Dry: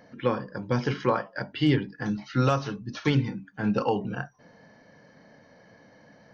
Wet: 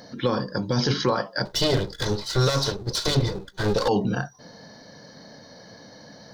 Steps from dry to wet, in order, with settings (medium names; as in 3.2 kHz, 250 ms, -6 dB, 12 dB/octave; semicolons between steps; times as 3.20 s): 1.45–3.88 s: comb filter that takes the minimum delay 2 ms; resonant high shelf 3.2 kHz +7 dB, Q 3; peak limiter -20.5 dBFS, peak gain reduction 9 dB; trim +8 dB